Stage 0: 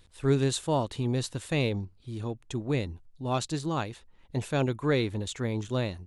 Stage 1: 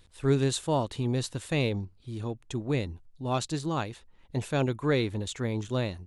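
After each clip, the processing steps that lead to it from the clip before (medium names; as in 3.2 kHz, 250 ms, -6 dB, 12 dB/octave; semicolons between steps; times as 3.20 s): no audible change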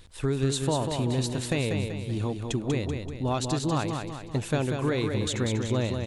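compression, threshold -31 dBFS, peak gain reduction 12 dB; feedback delay 192 ms, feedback 47%, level -5.5 dB; trim +7 dB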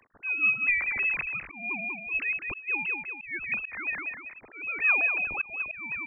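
formants replaced by sine waves; frequency inversion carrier 2.9 kHz; slow attack 309 ms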